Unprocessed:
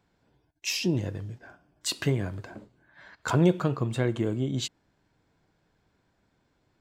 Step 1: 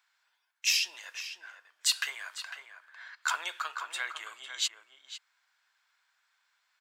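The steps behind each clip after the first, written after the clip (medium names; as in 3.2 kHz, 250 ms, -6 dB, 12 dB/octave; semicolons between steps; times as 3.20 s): high-pass 1.2 kHz 24 dB/octave; echo from a far wall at 86 m, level -8 dB; trim +4 dB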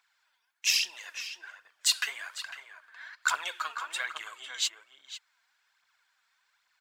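phaser 1.2 Hz, delay 4.6 ms, feedback 52%; bass shelf 190 Hz +3 dB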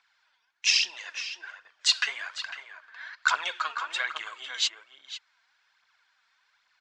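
low-pass 6.1 kHz 24 dB/octave; trim +4 dB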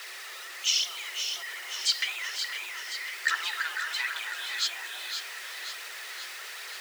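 jump at every zero crossing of -32 dBFS; echo whose repeats swap between lows and highs 263 ms, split 1.4 kHz, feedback 81%, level -7.5 dB; frequency shift +340 Hz; trim -4 dB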